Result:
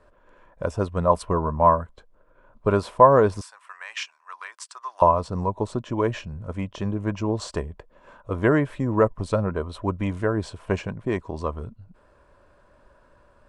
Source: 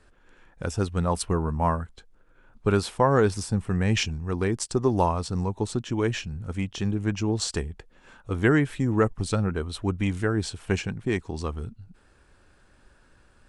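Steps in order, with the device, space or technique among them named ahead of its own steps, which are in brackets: 3.41–5.02 s: high-pass 1.2 kHz 24 dB/octave; inside a helmet (treble shelf 3.2 kHz -9 dB; small resonant body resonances 600/1000 Hz, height 14 dB, ringing for 25 ms); trim -1 dB

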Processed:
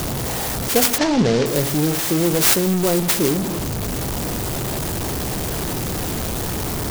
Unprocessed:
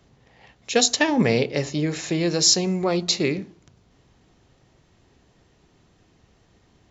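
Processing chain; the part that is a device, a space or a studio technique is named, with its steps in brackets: early CD player with a faulty converter (jump at every zero crossing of -18 dBFS; sampling jitter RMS 0.13 ms); 0.98–1.46 s: low-pass 5.8 kHz 24 dB/octave

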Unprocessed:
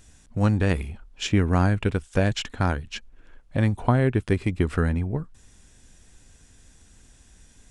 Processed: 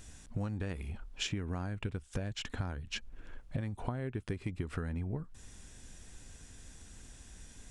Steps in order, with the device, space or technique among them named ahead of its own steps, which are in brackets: 1.84–3.61 s: peaking EQ 86 Hz +4 dB 2.7 oct; serial compression, leveller first (compression 2:1, threshold -23 dBFS, peak gain reduction 5.5 dB; compression 6:1, threshold -35 dBFS, peak gain reduction 15.5 dB); trim +1 dB

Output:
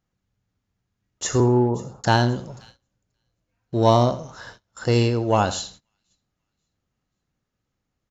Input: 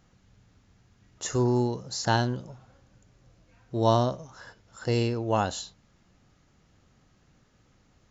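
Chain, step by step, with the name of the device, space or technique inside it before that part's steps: 1.40–2.04 s: steep low-pass 1.4 kHz 96 dB/octave; parallel distortion (in parallel at -9 dB: hard clipper -20.5 dBFS, distortion -11 dB); on the sum: feedback delay 84 ms, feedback 26%, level -15 dB; feedback echo behind a high-pass 532 ms, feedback 38%, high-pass 2.6 kHz, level -19 dB; gate -48 dBFS, range -23 dB; trim +4 dB

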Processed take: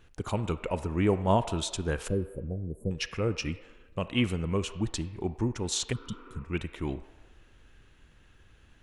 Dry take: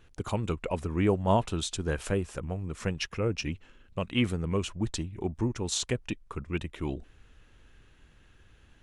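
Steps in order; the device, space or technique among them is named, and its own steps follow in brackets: 2.08–2.91 s: inverse Chebyshev band-stop 1.4–5.1 kHz, stop band 60 dB; filtered reverb send (on a send at -10.5 dB: high-pass 550 Hz 12 dB/octave + low-pass 3.1 kHz 12 dB/octave + reverberation RT60 1.4 s, pre-delay 33 ms); 5.95–6.37 s: on the sum: spectral replace 240–2900 Hz after

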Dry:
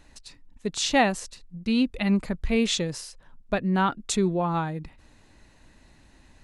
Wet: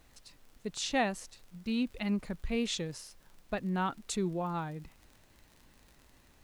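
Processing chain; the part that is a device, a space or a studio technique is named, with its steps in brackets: vinyl LP (wow and flutter; crackle 41 per s -36 dBFS; pink noise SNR 30 dB); trim -9 dB

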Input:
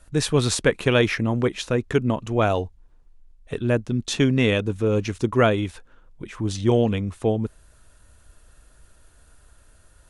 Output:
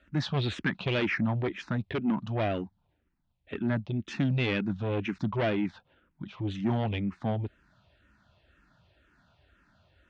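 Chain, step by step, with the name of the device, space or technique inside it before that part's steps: barber-pole phaser into a guitar amplifier (barber-pole phaser -2 Hz; saturation -21 dBFS, distortion -10 dB; cabinet simulation 100–3900 Hz, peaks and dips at 190 Hz +5 dB, 460 Hz -10 dB, 1.1 kHz -4 dB); 1.26–1.72 s: peaking EQ 2.8 kHz -5.5 dB 0.43 oct

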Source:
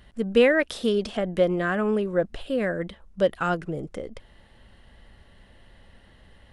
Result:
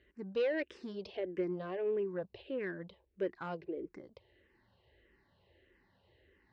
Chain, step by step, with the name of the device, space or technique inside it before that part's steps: barber-pole phaser into a guitar amplifier (barber-pole phaser -1.6 Hz; saturation -18.5 dBFS, distortion -15 dB; cabinet simulation 93–4500 Hz, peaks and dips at 150 Hz -7 dB, 220 Hz -10 dB, 370 Hz +8 dB, 710 Hz -6 dB, 1.3 kHz -9 dB, 3.3 kHz -7 dB); trim -8 dB

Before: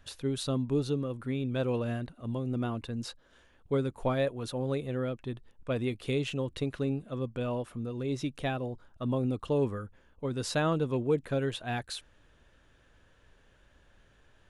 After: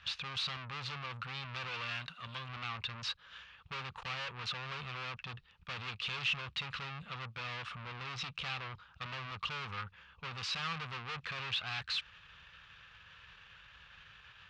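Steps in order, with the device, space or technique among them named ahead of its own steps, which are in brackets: 1.68–2.49 s: tilt EQ +2.5 dB/octave; scooped metal amplifier (valve stage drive 46 dB, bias 0.55; cabinet simulation 90–4500 Hz, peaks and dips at 170 Hz +7 dB, 630 Hz -8 dB, 1.2 kHz +7 dB, 2.6 kHz +6 dB; amplifier tone stack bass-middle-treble 10-0-10); trim +16.5 dB

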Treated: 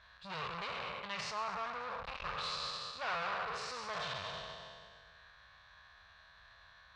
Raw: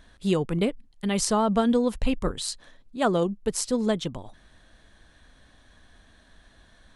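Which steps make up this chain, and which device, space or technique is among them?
spectral sustain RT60 1.93 s; scooped metal amplifier (valve stage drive 30 dB, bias 0.4; cabinet simulation 110–3900 Hz, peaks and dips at 110 Hz -4 dB, 220 Hz -9 dB, 320 Hz -8 dB, 1.1 kHz +7 dB, 2 kHz -4 dB, 3.2 kHz -10 dB; amplifier tone stack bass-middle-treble 10-0-10); 1.30–2.04 s: peaking EQ 10 kHz -7 dB -> -14.5 dB 2.6 oct; trim +5.5 dB

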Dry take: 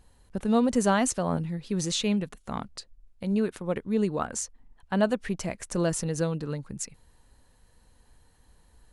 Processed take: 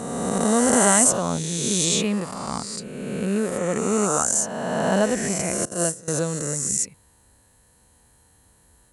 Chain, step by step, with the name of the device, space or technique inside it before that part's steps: reverse spectral sustain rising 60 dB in 2.17 s; 5.65–6.08 s: gate -21 dBFS, range -20 dB; budget condenser microphone (high-pass 70 Hz; resonant high shelf 6.1 kHz +6 dB, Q 1.5); trim +1 dB

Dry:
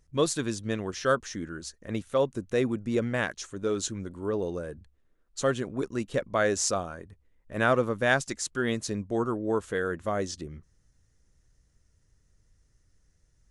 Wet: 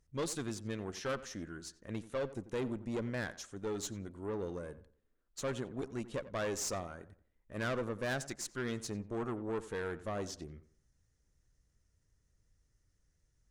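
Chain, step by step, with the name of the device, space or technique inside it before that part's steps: rockabilly slapback (valve stage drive 25 dB, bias 0.45; tape echo 90 ms, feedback 35%, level -13.5 dB, low-pass 2 kHz); trim -6 dB

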